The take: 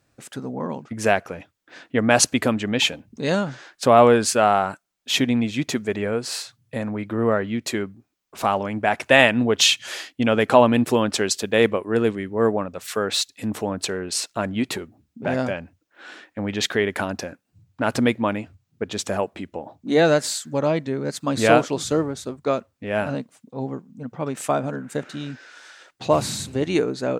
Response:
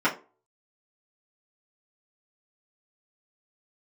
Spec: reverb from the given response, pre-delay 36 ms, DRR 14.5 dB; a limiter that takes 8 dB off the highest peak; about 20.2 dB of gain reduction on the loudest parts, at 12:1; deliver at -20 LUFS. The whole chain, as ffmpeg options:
-filter_complex "[0:a]acompressor=threshold=-29dB:ratio=12,alimiter=limit=-24dB:level=0:latency=1,asplit=2[a][b];[1:a]atrim=start_sample=2205,adelay=36[c];[b][c]afir=irnorm=-1:irlink=0,volume=-30dB[d];[a][d]amix=inputs=2:normalize=0,volume=15.5dB"

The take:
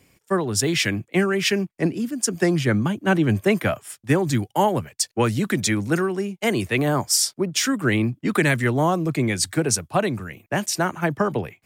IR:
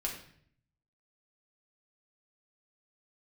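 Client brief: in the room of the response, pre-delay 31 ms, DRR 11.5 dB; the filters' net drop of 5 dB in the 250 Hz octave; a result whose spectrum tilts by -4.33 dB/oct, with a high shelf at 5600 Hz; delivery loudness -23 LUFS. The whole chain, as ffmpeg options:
-filter_complex "[0:a]equalizer=f=250:t=o:g=-7.5,highshelf=f=5.6k:g=-6.5,asplit=2[a][b];[1:a]atrim=start_sample=2205,adelay=31[c];[b][c]afir=irnorm=-1:irlink=0,volume=-14dB[d];[a][d]amix=inputs=2:normalize=0,volume=1.5dB"

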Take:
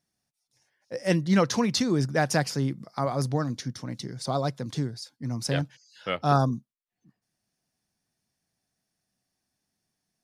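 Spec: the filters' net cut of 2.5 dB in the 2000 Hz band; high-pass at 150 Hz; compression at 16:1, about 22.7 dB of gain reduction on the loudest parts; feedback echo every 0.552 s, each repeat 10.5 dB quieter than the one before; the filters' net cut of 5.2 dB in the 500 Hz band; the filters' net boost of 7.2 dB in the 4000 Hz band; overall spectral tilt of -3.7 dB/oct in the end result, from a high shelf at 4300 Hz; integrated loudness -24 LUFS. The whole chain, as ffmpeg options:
-af "highpass=150,equalizer=f=500:t=o:g=-6.5,equalizer=f=2k:t=o:g=-5.5,equalizer=f=4k:t=o:g=5.5,highshelf=f=4.3k:g=7.5,acompressor=threshold=-39dB:ratio=16,aecho=1:1:552|1104|1656:0.299|0.0896|0.0269,volume=19dB"

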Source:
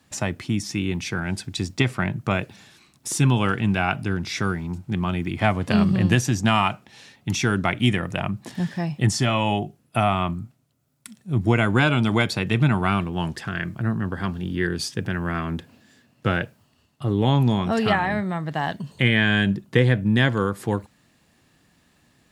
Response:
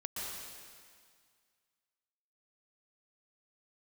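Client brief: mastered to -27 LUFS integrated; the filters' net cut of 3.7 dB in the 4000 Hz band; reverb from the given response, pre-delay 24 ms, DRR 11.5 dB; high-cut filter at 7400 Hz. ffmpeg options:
-filter_complex "[0:a]lowpass=7.4k,equalizer=f=4k:t=o:g=-5,asplit=2[a][b];[1:a]atrim=start_sample=2205,adelay=24[c];[b][c]afir=irnorm=-1:irlink=0,volume=-13.5dB[d];[a][d]amix=inputs=2:normalize=0,volume=-4dB"

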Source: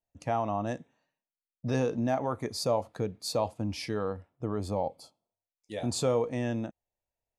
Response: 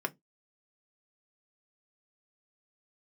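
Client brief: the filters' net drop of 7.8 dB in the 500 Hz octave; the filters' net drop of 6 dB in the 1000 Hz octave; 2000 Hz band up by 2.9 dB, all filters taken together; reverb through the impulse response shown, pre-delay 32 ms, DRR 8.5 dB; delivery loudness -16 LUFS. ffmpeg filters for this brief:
-filter_complex "[0:a]equalizer=f=500:t=o:g=-8,equalizer=f=1k:t=o:g=-6,equalizer=f=2k:t=o:g=6,asplit=2[a][b];[1:a]atrim=start_sample=2205,adelay=32[c];[b][c]afir=irnorm=-1:irlink=0,volume=-13.5dB[d];[a][d]amix=inputs=2:normalize=0,volume=19dB"

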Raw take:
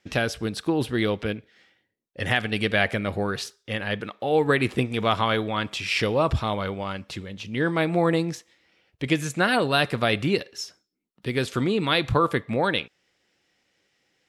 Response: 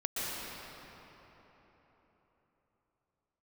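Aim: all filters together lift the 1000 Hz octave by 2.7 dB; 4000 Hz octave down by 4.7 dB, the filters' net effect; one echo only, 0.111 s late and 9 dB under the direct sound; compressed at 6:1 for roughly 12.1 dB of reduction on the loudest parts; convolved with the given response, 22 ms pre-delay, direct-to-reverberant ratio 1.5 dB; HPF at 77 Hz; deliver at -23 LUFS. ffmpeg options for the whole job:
-filter_complex "[0:a]highpass=77,equalizer=f=1k:t=o:g=4,equalizer=f=4k:t=o:g=-6.5,acompressor=threshold=-28dB:ratio=6,aecho=1:1:111:0.355,asplit=2[a][b];[1:a]atrim=start_sample=2205,adelay=22[c];[b][c]afir=irnorm=-1:irlink=0,volume=-8dB[d];[a][d]amix=inputs=2:normalize=0,volume=7.5dB"

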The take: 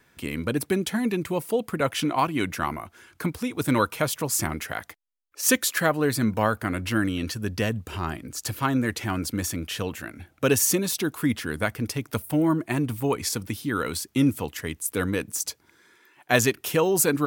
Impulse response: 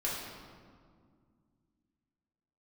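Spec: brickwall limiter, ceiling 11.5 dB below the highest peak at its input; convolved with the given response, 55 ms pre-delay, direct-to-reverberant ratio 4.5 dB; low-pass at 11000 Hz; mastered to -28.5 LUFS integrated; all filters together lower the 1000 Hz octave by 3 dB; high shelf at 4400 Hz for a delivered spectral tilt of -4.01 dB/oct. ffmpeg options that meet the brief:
-filter_complex "[0:a]lowpass=11k,equalizer=f=1k:t=o:g=-4.5,highshelf=f=4.4k:g=7,alimiter=limit=-14dB:level=0:latency=1,asplit=2[a][b];[1:a]atrim=start_sample=2205,adelay=55[c];[b][c]afir=irnorm=-1:irlink=0,volume=-10dB[d];[a][d]amix=inputs=2:normalize=0,volume=-3dB"

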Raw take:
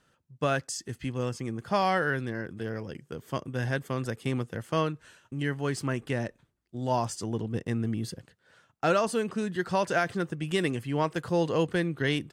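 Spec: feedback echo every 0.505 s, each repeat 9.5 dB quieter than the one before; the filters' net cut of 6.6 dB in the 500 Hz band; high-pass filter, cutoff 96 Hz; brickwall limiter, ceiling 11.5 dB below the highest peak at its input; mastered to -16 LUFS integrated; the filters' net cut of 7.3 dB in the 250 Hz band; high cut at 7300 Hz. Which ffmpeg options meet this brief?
-af "highpass=96,lowpass=7.3k,equalizer=f=250:t=o:g=-8.5,equalizer=f=500:t=o:g=-6,alimiter=level_in=2.5dB:limit=-24dB:level=0:latency=1,volume=-2.5dB,aecho=1:1:505|1010|1515|2020:0.335|0.111|0.0365|0.012,volume=22.5dB"

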